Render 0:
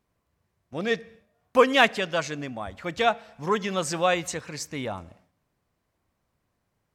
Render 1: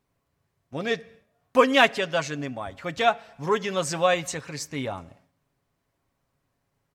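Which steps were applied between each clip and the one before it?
comb 7.3 ms, depth 40%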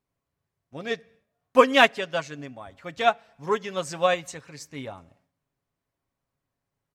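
upward expander 1.5:1, over -34 dBFS; gain +2.5 dB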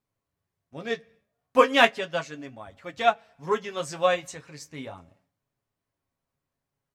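flange 0.36 Hz, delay 8.7 ms, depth 6.4 ms, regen -39%; gain +2.5 dB

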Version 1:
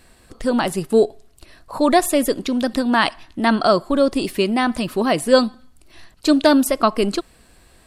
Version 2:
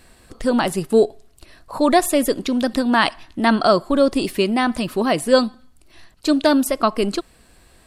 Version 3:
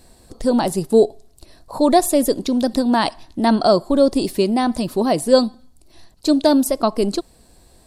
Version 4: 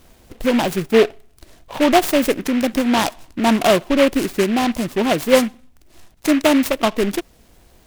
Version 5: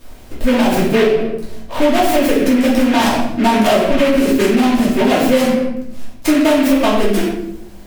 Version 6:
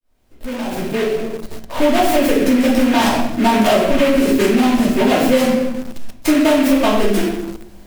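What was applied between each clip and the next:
vocal rider 2 s
band shelf 1900 Hz -9 dB; gain +1.5 dB
noise-modulated delay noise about 1900 Hz, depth 0.094 ms
shoebox room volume 180 m³, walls mixed, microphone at 2.7 m; in parallel at -1 dB: limiter -2 dBFS, peak gain reduction 10.5 dB; on the sum: compressor, threshold -3 dBFS, peak gain reduction 8 dB; gain -6 dB
opening faded in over 1.92 s; in parallel at -9 dB: bit-crush 4-bit; on the sum: gain -3.5 dB

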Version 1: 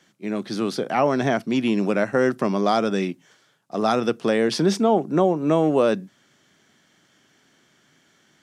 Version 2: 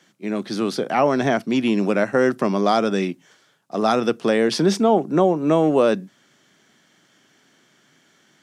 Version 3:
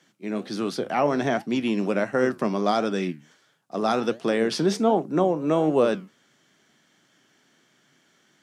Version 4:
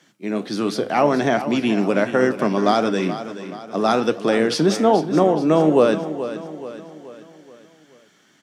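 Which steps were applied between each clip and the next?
HPF 120 Hz; gain +2 dB
flange 1.4 Hz, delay 5.7 ms, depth 8.6 ms, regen +79%
feedback echo 0.428 s, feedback 48%, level -12 dB; FDN reverb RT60 0.59 s, high-frequency decay 0.85×, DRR 16 dB; gain +5 dB

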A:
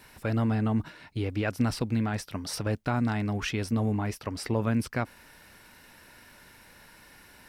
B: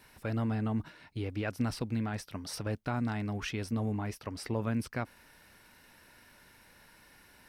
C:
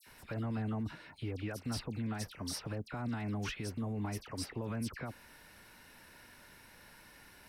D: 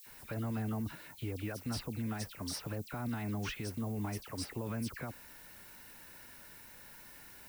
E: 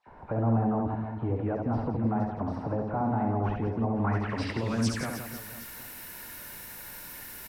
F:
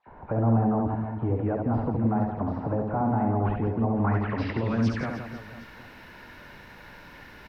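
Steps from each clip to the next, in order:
notch 7300 Hz, Q 23; gain -5.5 dB
limiter -31.5 dBFS, peak gain reduction 10.5 dB; dispersion lows, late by 67 ms, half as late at 2100 Hz; gain +1.5 dB
added noise violet -56 dBFS
low-pass sweep 850 Hz -> 14000 Hz, 3.86–5.21; on a send: reverse bouncing-ball echo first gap 70 ms, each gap 1.4×, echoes 5; on the sum: gain +7.5 dB
air absorption 260 m; gain +3.5 dB

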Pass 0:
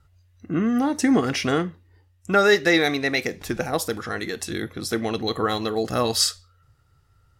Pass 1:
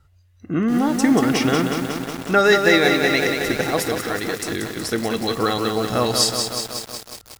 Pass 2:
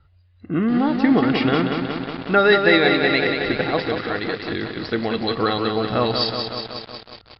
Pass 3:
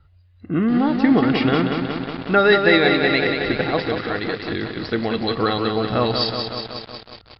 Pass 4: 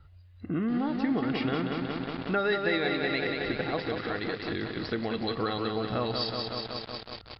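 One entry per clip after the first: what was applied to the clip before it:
lo-fi delay 0.184 s, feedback 80%, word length 6-bit, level -5 dB; gain +2 dB
steep low-pass 4800 Hz 96 dB/oct
low shelf 170 Hz +3 dB
compressor 2:1, threshold -35 dBFS, peak gain reduction 13.5 dB

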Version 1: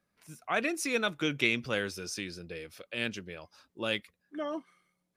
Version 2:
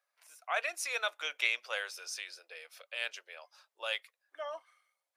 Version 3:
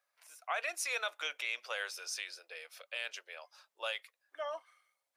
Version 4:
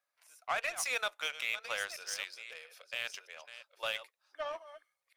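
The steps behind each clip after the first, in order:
steep high-pass 580 Hz 36 dB/oct; gain -2 dB
limiter -25.5 dBFS, peak gain reduction 11 dB; gain +1 dB
reverse delay 0.655 s, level -10 dB; soft clip -27.5 dBFS, distortion -18 dB; added harmonics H 7 -21 dB, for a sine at -23.5 dBFS; gain +4.5 dB

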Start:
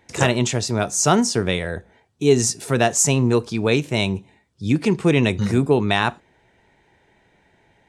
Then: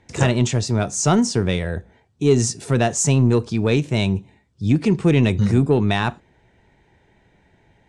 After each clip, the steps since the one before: in parallel at -7 dB: soft clip -18 dBFS, distortion -8 dB; on the sum: LPF 9500 Hz 24 dB/oct; low shelf 240 Hz +9 dB; gain -5 dB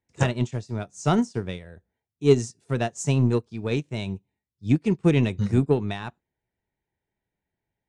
upward expander 2.5:1, over -30 dBFS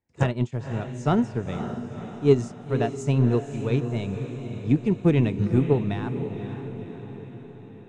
high shelf 3300 Hz -11.5 dB; notch 5800 Hz, Q 23; diffused feedback echo 0.522 s, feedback 56%, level -9 dB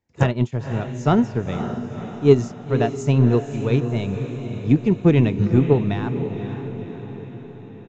downsampling 16000 Hz; gain +4.5 dB

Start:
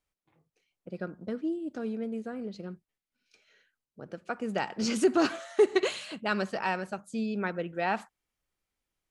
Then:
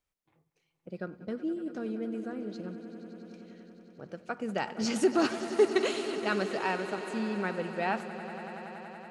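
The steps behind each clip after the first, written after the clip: swelling echo 94 ms, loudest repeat 5, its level -16 dB; gain -1.5 dB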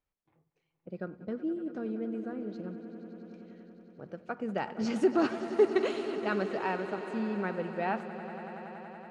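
LPF 1700 Hz 6 dB/oct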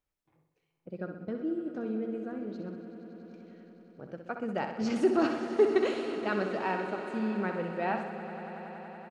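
feedback echo 64 ms, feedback 58%, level -8 dB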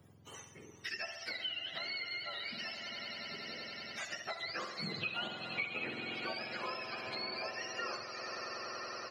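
spectrum mirrored in octaves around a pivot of 980 Hz; three-band squash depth 100%; gain -4.5 dB

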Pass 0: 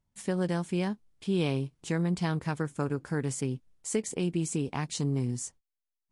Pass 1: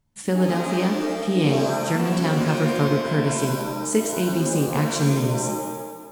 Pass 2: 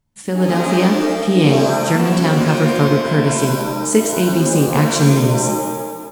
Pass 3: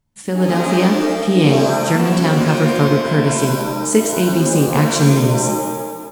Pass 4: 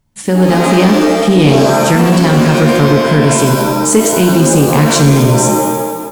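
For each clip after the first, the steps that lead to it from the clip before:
shimmer reverb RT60 1.3 s, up +7 st, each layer -2 dB, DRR 4 dB; gain +6.5 dB
AGC gain up to 11.5 dB
nothing audible
in parallel at +0.5 dB: limiter -9.5 dBFS, peak gain reduction 8 dB; on the sum: soft clip -3 dBFS, distortion -19 dB; gain +2.5 dB

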